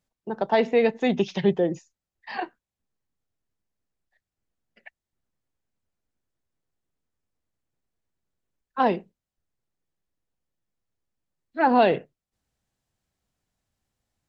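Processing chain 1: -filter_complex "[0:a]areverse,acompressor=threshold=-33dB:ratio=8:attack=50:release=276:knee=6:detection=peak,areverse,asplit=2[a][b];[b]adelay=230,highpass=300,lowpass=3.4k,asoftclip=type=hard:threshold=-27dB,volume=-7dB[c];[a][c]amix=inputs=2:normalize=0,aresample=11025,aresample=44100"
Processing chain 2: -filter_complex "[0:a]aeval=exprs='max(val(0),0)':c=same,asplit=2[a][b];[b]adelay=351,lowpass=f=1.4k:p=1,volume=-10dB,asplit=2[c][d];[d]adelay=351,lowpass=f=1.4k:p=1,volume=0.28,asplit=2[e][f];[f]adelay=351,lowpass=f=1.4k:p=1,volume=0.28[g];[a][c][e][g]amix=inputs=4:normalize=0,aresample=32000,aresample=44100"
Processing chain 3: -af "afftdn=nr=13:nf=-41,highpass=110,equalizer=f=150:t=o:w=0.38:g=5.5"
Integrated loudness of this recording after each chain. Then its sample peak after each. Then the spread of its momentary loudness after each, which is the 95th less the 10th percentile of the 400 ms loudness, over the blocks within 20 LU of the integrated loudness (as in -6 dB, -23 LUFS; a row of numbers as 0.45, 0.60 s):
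-36.0, -28.5, -23.5 LUFS; -19.0, -8.0, -7.0 dBFS; 18, 17, 17 LU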